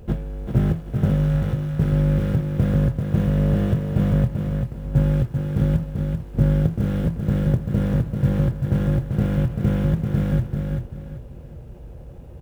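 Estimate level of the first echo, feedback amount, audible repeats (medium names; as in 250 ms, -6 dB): -5.0 dB, 28%, 3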